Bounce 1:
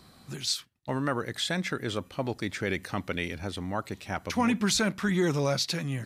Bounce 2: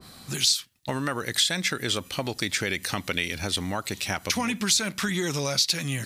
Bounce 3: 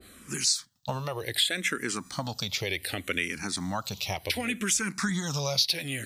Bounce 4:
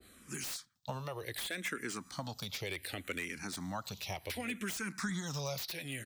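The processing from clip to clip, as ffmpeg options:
-af "highshelf=f=2.6k:g=8,acompressor=threshold=-31dB:ratio=6,adynamicequalizer=threshold=0.00316:dfrequency=1900:dqfactor=0.7:tfrequency=1900:tqfactor=0.7:attack=5:release=100:ratio=0.375:range=3:mode=boostabove:tftype=highshelf,volume=5.5dB"
-filter_complex "[0:a]asplit=2[a][b];[b]afreqshift=-0.67[c];[a][c]amix=inputs=2:normalize=1"
-filter_complex "[0:a]acrossover=split=320|1100|2000[a][b][c][d];[c]aecho=1:1:114:0.188[e];[d]aeval=exprs='0.0422*(abs(mod(val(0)/0.0422+3,4)-2)-1)':c=same[f];[a][b][e][f]amix=inputs=4:normalize=0,volume=-8dB"

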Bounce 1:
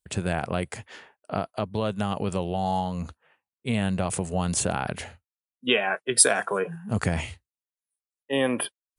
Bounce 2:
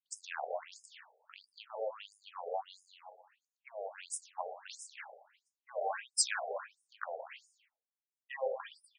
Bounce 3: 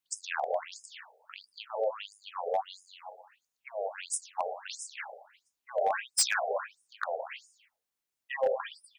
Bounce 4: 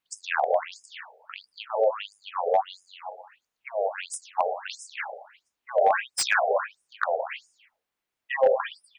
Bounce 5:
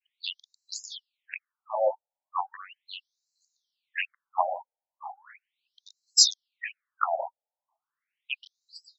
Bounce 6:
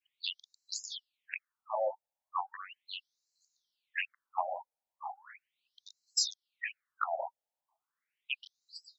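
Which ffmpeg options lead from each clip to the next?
-filter_complex "[0:a]flanger=delay=9.5:depth=7.8:regen=-66:speed=0.44:shape=sinusoidal,asplit=2[a][b];[b]aecho=0:1:118|236|354|472:0.398|0.155|0.0606|0.0236[c];[a][c]amix=inputs=2:normalize=0,afftfilt=real='re*between(b*sr/1024,570*pow(7100/570,0.5+0.5*sin(2*PI*1.5*pts/sr))/1.41,570*pow(7100/570,0.5+0.5*sin(2*PI*1.5*pts/sr))*1.41)':imag='im*between(b*sr/1024,570*pow(7100/570,0.5+0.5*sin(2*PI*1.5*pts/sr))/1.41,570*pow(7100/570,0.5+0.5*sin(2*PI*1.5*pts/sr))*1.41)':win_size=1024:overlap=0.75,volume=-2dB"
-af "asoftclip=type=hard:threshold=-27.5dB,volume=7.5dB"
-af "bass=f=250:g=-2,treble=f=4k:g=-11,volume=8dB"
-af "adynamicequalizer=threshold=0.0112:dfrequency=1600:dqfactor=1:tfrequency=1600:tqfactor=1:attack=5:release=100:ratio=0.375:range=2:mode=boostabove:tftype=bell,crystalizer=i=7:c=0,afftfilt=real='re*between(b*sr/1024,660*pow(5600/660,0.5+0.5*sin(2*PI*0.37*pts/sr))/1.41,660*pow(5600/660,0.5+0.5*sin(2*PI*0.37*pts/sr))*1.41)':imag='im*between(b*sr/1024,660*pow(5600/660,0.5+0.5*sin(2*PI*0.37*pts/sr))/1.41,660*pow(5600/660,0.5+0.5*sin(2*PI*0.37*pts/sr))*1.41)':win_size=1024:overlap=0.75,volume=-3.5dB"
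-af "acompressor=threshold=-29dB:ratio=3,volume=-1.5dB"

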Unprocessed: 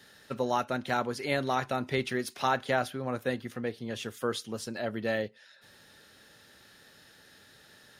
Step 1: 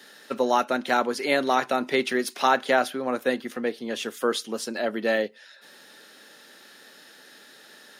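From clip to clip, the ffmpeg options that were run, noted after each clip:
-af "highpass=f=220:w=0.5412,highpass=f=220:w=1.3066,volume=7dB"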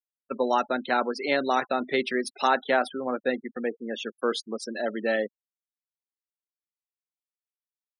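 -af "afftfilt=real='re*gte(hypot(re,im),0.0316)':imag='im*gte(hypot(re,im),0.0316)':win_size=1024:overlap=0.75,volume=-2dB"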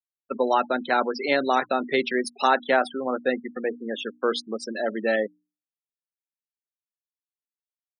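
-af "afftfilt=real='re*gte(hypot(re,im),0.0224)':imag='im*gte(hypot(re,im),0.0224)':win_size=1024:overlap=0.75,bandreject=f=60:t=h:w=6,bandreject=f=120:t=h:w=6,bandreject=f=180:t=h:w=6,bandreject=f=240:t=h:w=6,bandreject=f=300:t=h:w=6,volume=2.5dB"

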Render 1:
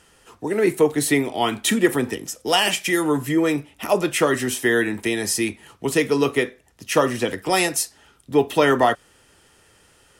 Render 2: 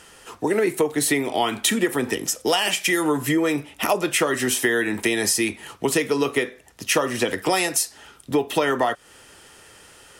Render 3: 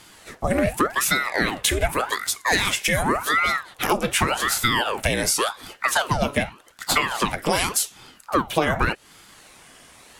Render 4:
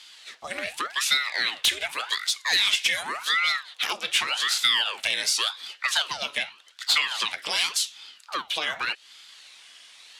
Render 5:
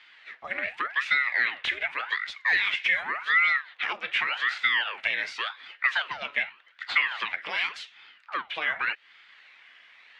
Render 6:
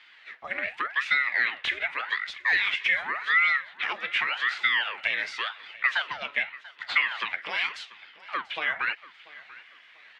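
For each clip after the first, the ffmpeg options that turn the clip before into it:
-af "lowshelf=f=250:g=-6.5,acompressor=threshold=-26dB:ratio=6,volume=8dB"
-af "aeval=exprs='val(0)*sin(2*PI*940*n/s+940*0.85/0.87*sin(2*PI*0.87*n/s))':c=same,volume=2.5dB"
-af "bandpass=f=3.7k:t=q:w=1.8:csg=0,aeval=exprs='0.447*sin(PI/2*2.51*val(0)/0.447)':c=same,volume=-5.5dB"
-af "lowpass=f=2k:t=q:w=2.6,volume=-4dB"
-af "aecho=1:1:689|1378|2067:0.106|0.0339|0.0108"

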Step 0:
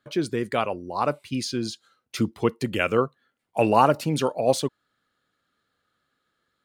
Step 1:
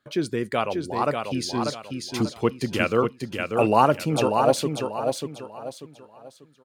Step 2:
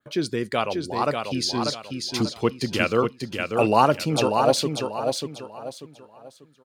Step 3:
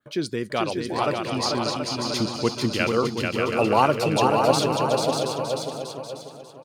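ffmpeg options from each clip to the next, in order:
-af "aecho=1:1:591|1182|1773|2364:0.562|0.18|0.0576|0.0184"
-af "adynamicequalizer=threshold=0.00447:dfrequency=4600:dqfactor=1.3:tfrequency=4600:tqfactor=1.3:attack=5:release=100:ratio=0.375:range=3.5:mode=boostabove:tftype=bell"
-af "aecho=1:1:440|726|911.9|1033|1111:0.631|0.398|0.251|0.158|0.1,volume=-1.5dB"

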